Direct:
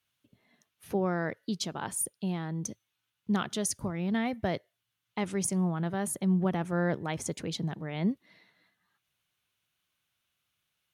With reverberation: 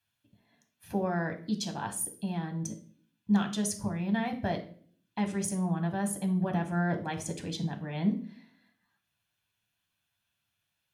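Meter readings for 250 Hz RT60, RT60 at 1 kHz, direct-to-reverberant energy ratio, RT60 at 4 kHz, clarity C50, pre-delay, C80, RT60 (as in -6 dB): 0.75 s, 0.45 s, 3.5 dB, 0.40 s, 12.0 dB, 7 ms, 17.0 dB, 0.50 s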